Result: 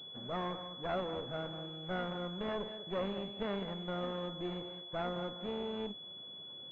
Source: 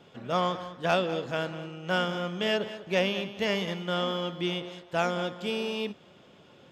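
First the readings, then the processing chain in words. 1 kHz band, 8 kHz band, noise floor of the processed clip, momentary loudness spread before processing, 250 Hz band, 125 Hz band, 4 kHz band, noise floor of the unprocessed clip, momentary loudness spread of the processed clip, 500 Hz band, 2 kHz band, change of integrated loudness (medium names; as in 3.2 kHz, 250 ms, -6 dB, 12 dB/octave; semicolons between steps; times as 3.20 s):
-9.5 dB, under -25 dB, -49 dBFS, 6 LU, -7.5 dB, -8.0 dB, -8.0 dB, -56 dBFS, 5 LU, -9.0 dB, -14.5 dB, -9.5 dB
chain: one-sided clip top -37.5 dBFS, bottom -19.5 dBFS; class-D stage that switches slowly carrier 3.4 kHz; trim -5 dB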